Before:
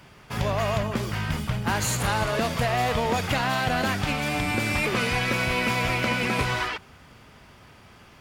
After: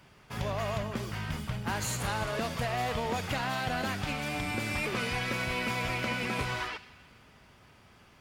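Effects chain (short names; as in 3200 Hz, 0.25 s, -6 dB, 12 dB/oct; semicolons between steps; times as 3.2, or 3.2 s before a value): on a send: weighting filter ITU-R 468 + reverb RT60 2.7 s, pre-delay 5 ms, DRR 14.5 dB; on the sum: gain -7.5 dB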